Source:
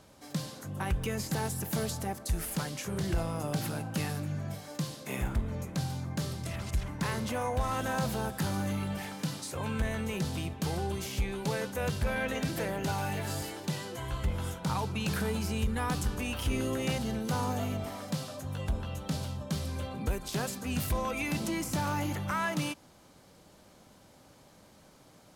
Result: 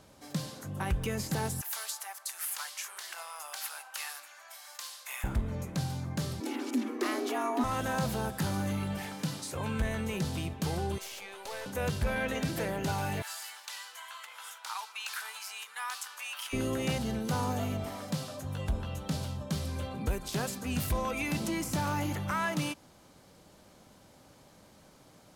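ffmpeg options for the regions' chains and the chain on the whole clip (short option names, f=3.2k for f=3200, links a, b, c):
-filter_complex "[0:a]asettb=1/sr,asplit=3[a][b][c];[a]atrim=end=1.614[d];[b]atrim=start=1.61:end=5.24,asetpts=PTS-STARTPTS,afade=t=in:d=0.004:c=qsin,afade=t=out:st=3.626:d=0.004:c=qsin,highpass=f=930:w=0.5412,highpass=f=930:w=1.3066,highshelf=f=8.8k:g=5[e];[c]atrim=start=5.236[f];[d][e]acrossfade=d=0.004:c1=hsin:c2=qsin[g];[g][f]acrossfade=d=0.004:c1=qsin:c2=hsin,asettb=1/sr,asplit=3[h][i][j];[h]atrim=end=6.404[k];[i]atrim=start=6.4:end=7.64,asetpts=PTS-STARTPTS,afade=t=in:d=0.004:c=qsin,afade=t=out:st=1.236:d=0.004:c=qsin,equalizer=f=8.4k:t=o:w=0.29:g=-4,aeval=exprs='val(0)+0.00794*(sin(2*PI*50*n/s)+sin(2*PI*2*50*n/s)/2+sin(2*PI*3*50*n/s)/3+sin(2*PI*4*50*n/s)/4+sin(2*PI*5*50*n/s)/5)':c=same,afreqshift=190[l];[j]atrim=start=7.636[m];[k][l]acrossfade=d=0.004:c1=hsin:c2=qsin[n];[n][m]acrossfade=d=0.004:c1=qsin:c2=hsin,asettb=1/sr,asplit=3[o][p][q];[o]atrim=end=10.984[r];[p]atrim=start=10.98:end=11.66,asetpts=PTS-STARTPTS,afade=t=in:d=0.004:c=qsin,afade=t=out:st=0.676:d=0.004:c=qsin,highpass=f=500:w=0.5412,highpass=f=500:w=1.3066,aeval=exprs='(tanh(56.2*val(0)+0.5)-tanh(0.5))/56.2':c=same[s];[q]atrim=start=11.656[t];[r][s]acrossfade=d=0.004:c1=hsin:c2=qsin[u];[u][t]acrossfade=d=0.004:c1=qsin:c2=hsin,asettb=1/sr,asplit=3[v][w][x];[v]atrim=end=13.224[y];[w]atrim=start=13.22:end=16.53,asetpts=PTS-STARTPTS,afade=t=in:d=0.004:c=qsin,afade=t=out:st=3.306:d=0.004:c=qsin,aeval=exprs='sgn(val(0))*max(abs(val(0))-0.00133,0)':c=same,highpass=f=1k:w=0.5412,highpass=f=1k:w=1.3066[z];[x]atrim=start=16.526[aa];[y][z]acrossfade=d=0.004:c1=hsin:c2=qsin[ab];[ab][aa]acrossfade=d=0.004:c1=qsin:c2=hsin"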